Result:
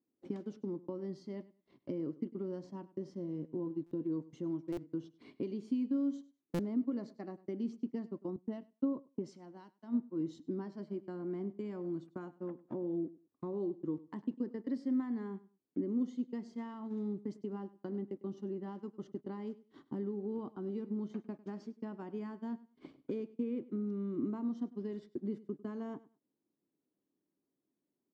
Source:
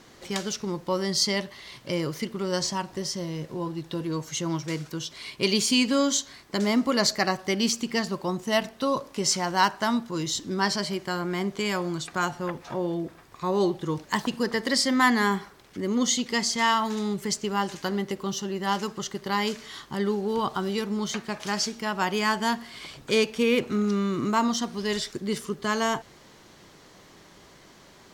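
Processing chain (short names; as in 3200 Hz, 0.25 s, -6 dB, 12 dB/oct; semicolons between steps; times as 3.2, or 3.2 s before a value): compressor 6:1, threshold -39 dBFS, peak gain reduction 21.5 dB; gate -42 dBFS, range -36 dB; band-pass 280 Hz, Q 3.2; feedback echo 0.1 s, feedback 20%, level -19 dB; stuck buffer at 3.86/4.72/6.54, samples 256, times 8; 8.36–10.4 three-band expander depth 100%; gain +10.5 dB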